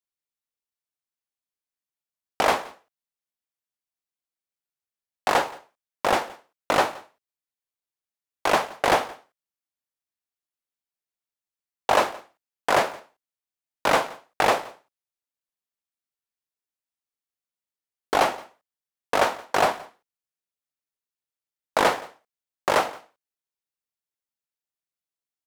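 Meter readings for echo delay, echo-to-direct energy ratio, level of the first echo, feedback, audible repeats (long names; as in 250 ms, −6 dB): 172 ms, −22.0 dB, −22.0 dB, repeats not evenly spaced, 1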